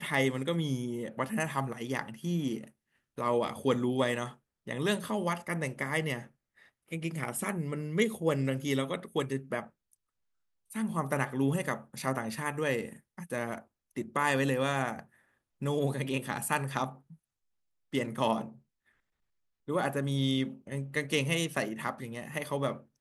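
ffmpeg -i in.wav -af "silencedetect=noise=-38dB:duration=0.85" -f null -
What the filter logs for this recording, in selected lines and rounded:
silence_start: 9.63
silence_end: 10.71 | silence_duration: 1.08
silence_start: 16.89
silence_end: 17.94 | silence_duration: 1.04
silence_start: 18.48
silence_end: 19.69 | silence_duration: 1.21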